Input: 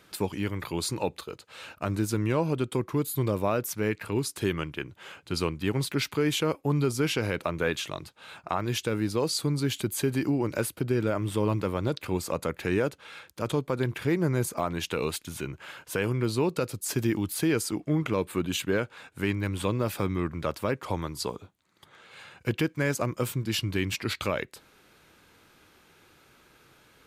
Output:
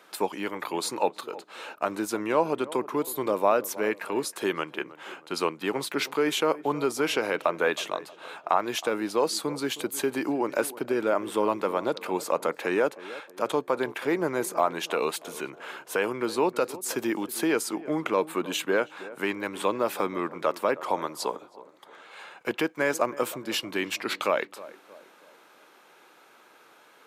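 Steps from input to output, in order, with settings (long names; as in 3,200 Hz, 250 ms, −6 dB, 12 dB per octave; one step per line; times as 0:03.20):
Bessel high-pass filter 310 Hz, order 4
parametric band 830 Hz +8 dB 1.8 octaves
notch filter 4,700 Hz, Q 28
tape delay 317 ms, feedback 50%, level −15.5 dB, low-pass 1,100 Hz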